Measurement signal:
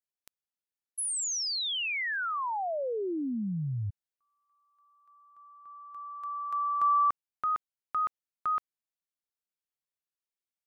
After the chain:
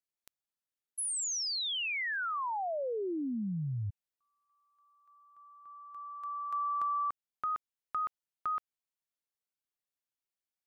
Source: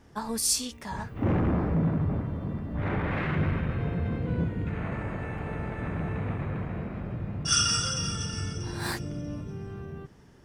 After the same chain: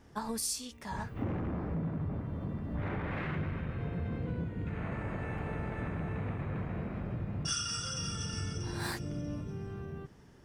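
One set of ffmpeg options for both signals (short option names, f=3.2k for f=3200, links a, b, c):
-af "acompressor=threshold=-28dB:ratio=6:attack=15:release=684:knee=1:detection=rms,volume=-2.5dB"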